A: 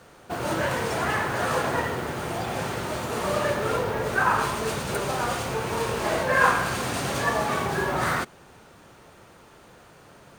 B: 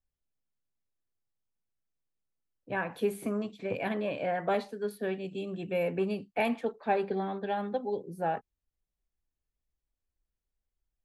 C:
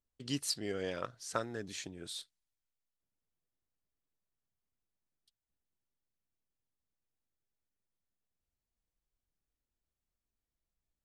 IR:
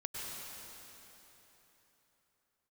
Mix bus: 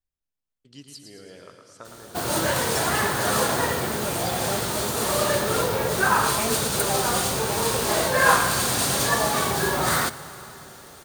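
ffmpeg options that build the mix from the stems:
-filter_complex "[0:a]aexciter=amount=1.4:drive=9.7:freq=3.5k,adelay=1850,volume=0.5dB,asplit=2[a][b];[b]volume=-14.5dB[c];[1:a]volume=-2.5dB[d];[2:a]adelay=450,volume=-11.5dB,asplit=3[e][f][g];[f]volume=-4dB[h];[g]volume=-3.5dB[i];[3:a]atrim=start_sample=2205[j];[c][h]amix=inputs=2:normalize=0[k];[k][j]afir=irnorm=-1:irlink=0[l];[i]aecho=0:1:112|224|336|448|560|672|784|896:1|0.55|0.303|0.166|0.0915|0.0503|0.0277|0.0152[m];[a][d][e][l][m]amix=inputs=5:normalize=0"

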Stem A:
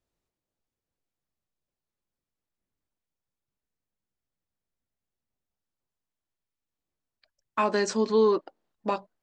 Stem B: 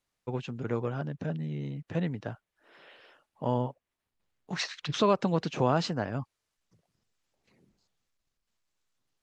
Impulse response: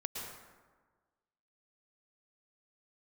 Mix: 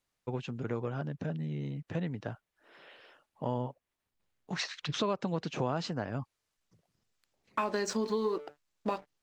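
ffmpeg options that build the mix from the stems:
-filter_complex "[0:a]bandreject=f=146.9:t=h:w=4,bandreject=f=293.8:t=h:w=4,bandreject=f=440.7:t=h:w=4,bandreject=f=587.6:t=h:w=4,bandreject=f=734.5:t=h:w=4,bandreject=f=881.4:t=h:w=4,acompressor=threshold=-23dB:ratio=6,aeval=exprs='sgn(val(0))*max(abs(val(0))-0.00282,0)':c=same,volume=2dB[a];[1:a]volume=-0.5dB[b];[a][b]amix=inputs=2:normalize=0,acompressor=threshold=-32dB:ratio=2"

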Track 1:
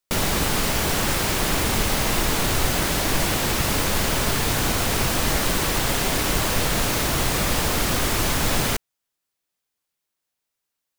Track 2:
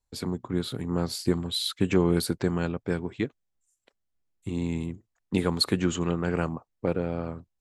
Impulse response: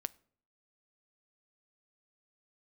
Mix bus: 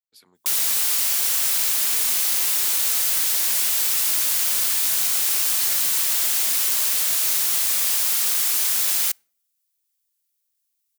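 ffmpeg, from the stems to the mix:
-filter_complex "[0:a]adelay=350,volume=1.5dB,asplit=2[a][b];[b]volume=-6dB[c];[1:a]equalizer=f=7.8k:w=1.1:g=-11.5,volume=-4dB[d];[2:a]atrim=start_sample=2205[e];[c][e]afir=irnorm=-1:irlink=0[f];[a][d][f]amix=inputs=3:normalize=0,aderivative"

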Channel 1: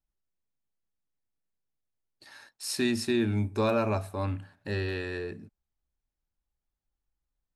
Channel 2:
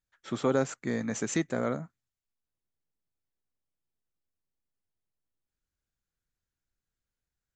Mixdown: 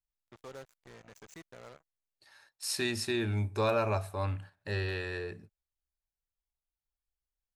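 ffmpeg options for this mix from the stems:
-filter_complex "[0:a]agate=range=-8dB:threshold=-45dB:ratio=16:detection=peak,volume=-0.5dB[a];[1:a]acrusher=bits=4:mix=0:aa=0.5,volume=-18.5dB[b];[a][b]amix=inputs=2:normalize=0,equalizer=f=250:w=1.7:g=-10.5"

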